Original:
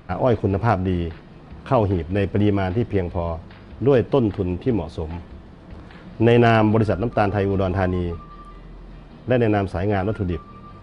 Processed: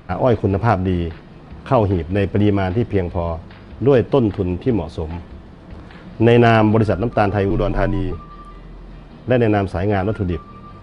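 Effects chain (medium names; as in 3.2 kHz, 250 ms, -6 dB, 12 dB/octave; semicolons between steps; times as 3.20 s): 7.50–8.12 s: frequency shift -61 Hz; trim +3 dB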